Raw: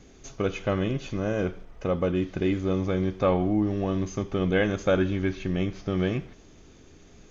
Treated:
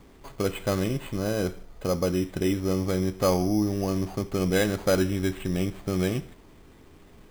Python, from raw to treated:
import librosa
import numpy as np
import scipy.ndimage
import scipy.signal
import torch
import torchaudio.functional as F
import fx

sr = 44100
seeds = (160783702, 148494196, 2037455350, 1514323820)

y = np.repeat(x[::8], 8)[:len(x)]